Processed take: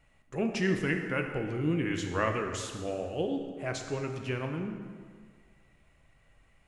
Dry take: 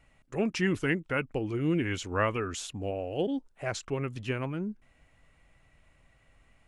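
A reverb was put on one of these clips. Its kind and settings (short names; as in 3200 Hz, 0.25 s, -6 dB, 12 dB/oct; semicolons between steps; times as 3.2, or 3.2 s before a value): plate-style reverb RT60 1.8 s, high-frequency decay 0.75×, DRR 3.5 dB; gain -2.5 dB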